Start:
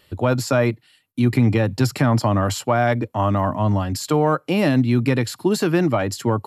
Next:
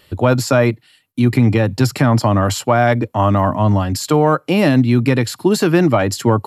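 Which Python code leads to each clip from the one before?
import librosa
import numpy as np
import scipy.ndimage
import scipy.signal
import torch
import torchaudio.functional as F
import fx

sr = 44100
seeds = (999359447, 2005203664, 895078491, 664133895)

y = fx.rider(x, sr, range_db=10, speed_s=2.0)
y = y * librosa.db_to_amplitude(4.5)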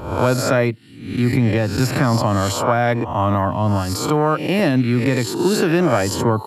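y = fx.spec_swells(x, sr, rise_s=0.66)
y = y * librosa.db_to_amplitude(-4.5)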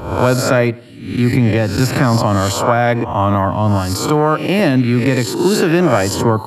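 y = fx.echo_filtered(x, sr, ms=95, feedback_pct=44, hz=2800.0, wet_db=-22.0)
y = y * librosa.db_to_amplitude(3.5)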